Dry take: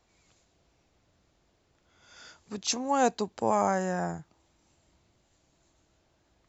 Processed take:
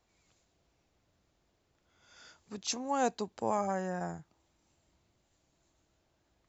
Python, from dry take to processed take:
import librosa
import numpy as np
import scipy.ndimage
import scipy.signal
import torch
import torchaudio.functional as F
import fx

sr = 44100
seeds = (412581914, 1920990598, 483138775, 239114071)

y = fx.hpss_only(x, sr, part='harmonic', at=(3.57, 4.01))
y = y * 10.0 ** (-5.5 / 20.0)